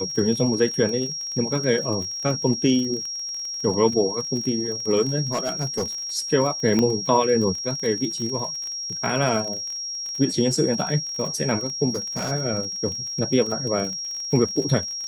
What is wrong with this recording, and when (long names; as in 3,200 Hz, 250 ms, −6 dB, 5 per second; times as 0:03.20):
surface crackle 42 per second −29 dBFS
whistle 5,600 Hz −28 dBFS
0:05.32–0:05.84: clipping −19.5 dBFS
0:06.79: click −10 dBFS
0:11.90–0:12.32: clipping −22.5 dBFS